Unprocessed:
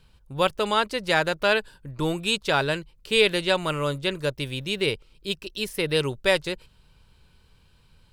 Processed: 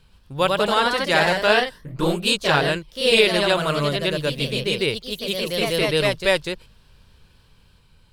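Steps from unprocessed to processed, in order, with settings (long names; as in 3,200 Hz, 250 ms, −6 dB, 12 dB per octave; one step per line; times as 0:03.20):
delay with pitch and tempo change per echo 117 ms, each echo +1 semitone, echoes 3
level +2 dB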